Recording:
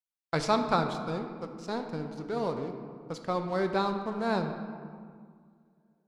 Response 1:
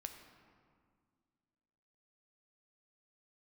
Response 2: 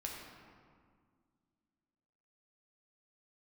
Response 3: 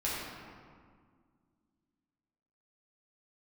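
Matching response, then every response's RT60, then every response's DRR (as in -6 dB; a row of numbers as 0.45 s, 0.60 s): 1; 2.0 s, 1.9 s, 1.9 s; 5.5 dB, -2.0 dB, -8.0 dB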